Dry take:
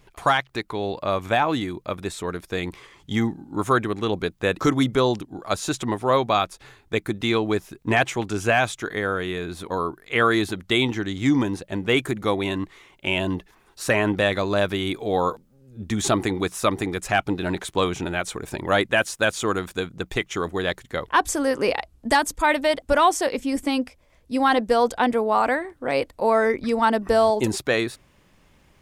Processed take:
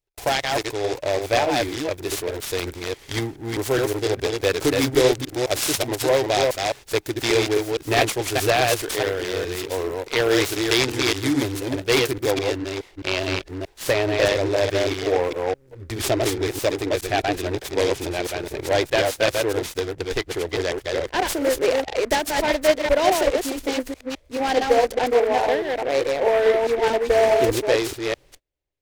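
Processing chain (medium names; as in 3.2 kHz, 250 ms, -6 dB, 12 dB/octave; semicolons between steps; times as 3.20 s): chunks repeated in reverse 210 ms, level -2.5 dB; treble shelf 5.3 kHz +10.5 dB, from 12.32 s -2.5 dB; gate -46 dBFS, range -31 dB; static phaser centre 490 Hz, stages 4; delay time shaken by noise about 1.3 kHz, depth 0.052 ms; trim +2.5 dB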